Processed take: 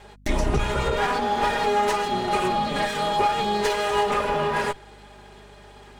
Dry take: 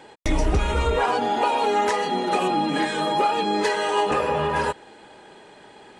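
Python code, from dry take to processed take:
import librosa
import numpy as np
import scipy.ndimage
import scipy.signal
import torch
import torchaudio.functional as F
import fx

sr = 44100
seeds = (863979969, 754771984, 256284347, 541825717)

y = fx.lower_of_two(x, sr, delay_ms=4.9)
y = fx.add_hum(y, sr, base_hz=50, snr_db=27)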